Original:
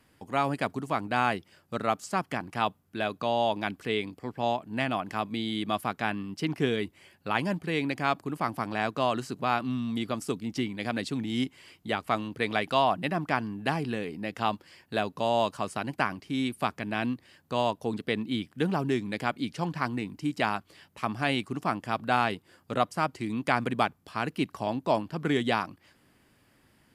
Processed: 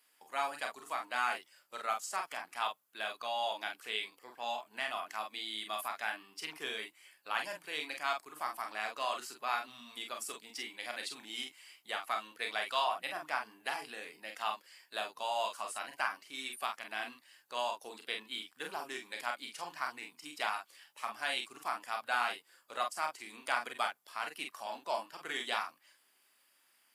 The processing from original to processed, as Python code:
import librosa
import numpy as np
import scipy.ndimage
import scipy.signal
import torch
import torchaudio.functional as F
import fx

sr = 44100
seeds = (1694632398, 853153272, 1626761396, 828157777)

y = fx.spec_quant(x, sr, step_db=15)
y = scipy.signal.sosfilt(scipy.signal.butter(2, 840.0, 'highpass', fs=sr, output='sos'), y)
y = fx.high_shelf(y, sr, hz=6900.0, db=11.0)
y = fx.room_early_taps(y, sr, ms=(33, 46), db=(-8.0, -6.0))
y = y * 10.0 ** (-6.0 / 20.0)